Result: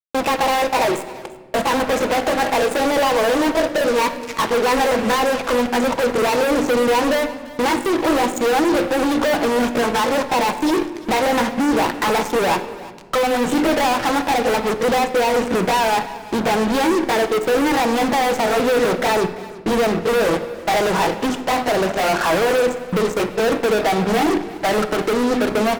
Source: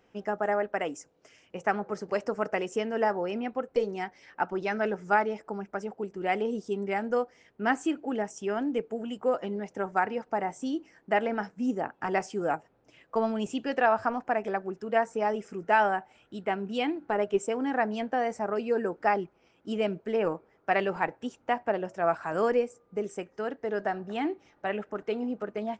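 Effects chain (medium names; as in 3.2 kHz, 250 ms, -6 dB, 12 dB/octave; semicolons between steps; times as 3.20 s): pitch bend over the whole clip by +4.5 st ending unshifted; high-pass 190 Hz 6 dB/octave; expander -56 dBFS; low-pass 7.7 kHz; treble shelf 2.1 kHz -11.5 dB; compression 12:1, threshold -35 dBFS, peak gain reduction 14.5 dB; hum notches 50/100/150/200/250/300/350 Hz; fuzz box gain 55 dB, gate -56 dBFS; delay 342 ms -19 dB; simulated room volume 1600 m³, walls mixed, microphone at 0.64 m; trim -3 dB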